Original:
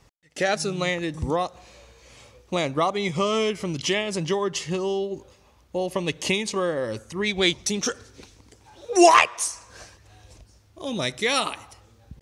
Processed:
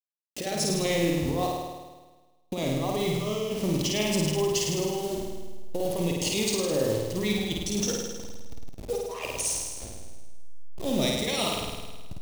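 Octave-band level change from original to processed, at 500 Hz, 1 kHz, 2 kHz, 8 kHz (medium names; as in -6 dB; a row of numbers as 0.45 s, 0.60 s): -3.5 dB, -11.0 dB, -9.0 dB, 0.0 dB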